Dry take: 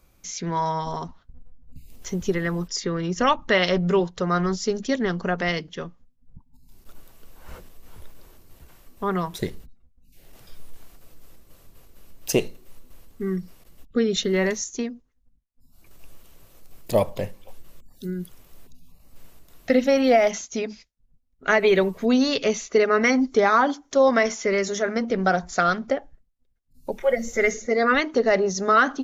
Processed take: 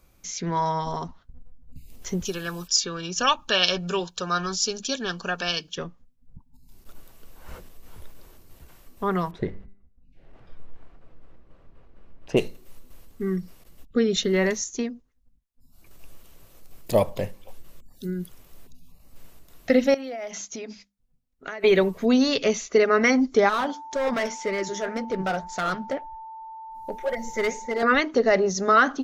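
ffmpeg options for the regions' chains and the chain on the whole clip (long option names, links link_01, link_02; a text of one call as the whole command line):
ffmpeg -i in.wav -filter_complex "[0:a]asettb=1/sr,asplit=3[link_01][link_02][link_03];[link_01]atrim=end=2.254[link_04];[link_02]atrim=start=2.25:end=5.78,asetpts=PTS-STARTPTS,afade=type=in:duration=0.004:curve=qsin,afade=type=out:start_time=3.526:duration=0.004:curve=qsin,asuperstop=centerf=2000:order=20:qfactor=4.9,tiltshelf=frequency=1300:gain=-9[link_05];[link_03]atrim=start=5.776[link_06];[link_04][link_05]acrossfade=duration=0.004:curve1=hsin:curve2=qsin[link_07];[link_07][link_06]acrossfade=duration=0.004:curve1=qsin:curve2=hsin,asettb=1/sr,asplit=3[link_08][link_09][link_10];[link_08]atrim=end=9.314[link_11];[link_09]atrim=start=9.31:end=12.37,asetpts=PTS-STARTPTS,afade=type=in:duration=0.004:curve=qsin,afade=type=out:start_time=3.056:duration=0.004:curve=qsin,lowpass=1800,bandreject=frequency=99.89:width_type=h:width=4,bandreject=frequency=199.78:width_type=h:width=4,bandreject=frequency=299.67:width_type=h:width=4,bandreject=frequency=399.56:width_type=h:width=4,bandreject=frequency=499.45:width_type=h:width=4,bandreject=frequency=599.34:width_type=h:width=4,bandreject=frequency=699.23:width_type=h:width=4,bandreject=frequency=799.12:width_type=h:width=4,bandreject=frequency=899.01:width_type=h:width=4,bandreject=frequency=998.9:width_type=h:width=4,bandreject=frequency=1098.79:width_type=h:width=4,bandreject=frequency=1198.68:width_type=h:width=4,bandreject=frequency=1298.57:width_type=h:width=4,bandreject=frequency=1398.46:width_type=h:width=4,bandreject=frequency=1498.35:width_type=h:width=4,bandreject=frequency=1598.24:width_type=h:width=4,bandreject=frequency=1698.13:width_type=h:width=4,bandreject=frequency=1798.02:width_type=h:width=4,bandreject=frequency=1897.91:width_type=h:width=4,bandreject=frequency=1997.8:width_type=h:width=4,bandreject=frequency=2097.69:width_type=h:width=4,bandreject=frequency=2197.58:width_type=h:width=4,bandreject=frequency=2297.47:width_type=h:width=4,bandreject=frequency=2397.36:width_type=h:width=4,bandreject=frequency=2497.25:width_type=h:width=4,bandreject=frequency=2597.14:width_type=h:width=4,bandreject=frequency=2697.03:width_type=h:width=4[link_12];[link_10]atrim=start=12.366[link_13];[link_11][link_12]acrossfade=duration=0.004:curve1=hsin:curve2=qsin[link_14];[link_14][link_13]acrossfade=duration=0.004:curve1=qsin:curve2=hsin,asettb=1/sr,asplit=3[link_15][link_16][link_17];[link_15]atrim=end=19.944[link_18];[link_16]atrim=start=19.94:end=21.64,asetpts=PTS-STARTPTS,afade=type=in:duration=0.004:curve=qsin,afade=type=out:start_time=1.696:duration=0.004:curve=qsin,bandreject=frequency=50:width_type=h:width=6,bandreject=frequency=100:width_type=h:width=6,bandreject=frequency=150:width_type=h:width=6,bandreject=frequency=200:width_type=h:width=6,bandreject=frequency=250:width_type=h:width=6,acompressor=threshold=-30dB:ratio=10:attack=3.2:release=140:knee=1:detection=peak,lowshelf=frequency=130:gain=-8[link_19];[link_17]atrim=start=21.636[link_20];[link_18][link_19]acrossfade=duration=0.004:curve1=hsin:curve2=qsin[link_21];[link_21][link_20]acrossfade=duration=0.004:curve1=qsin:curve2=hsin,asettb=1/sr,asplit=3[link_22][link_23][link_24];[link_22]atrim=end=23.494[link_25];[link_23]atrim=start=23.49:end=27.83,asetpts=PTS-STARTPTS,afade=type=in:duration=0.004:curve=qsin,afade=type=out:start_time=4.336:duration=0.004:curve=qsin,asoftclip=type=hard:threshold=-17dB,flanger=delay=0.9:depth=8.9:regen=67:speed=1.9:shape=sinusoidal,aeval=exprs='val(0)+0.0141*sin(2*PI*890*n/s)':channel_layout=same[link_26];[link_24]atrim=start=27.826[link_27];[link_25][link_26]acrossfade=duration=0.004:curve1=hsin:curve2=qsin[link_28];[link_28][link_27]acrossfade=duration=0.004:curve1=qsin:curve2=hsin" out.wav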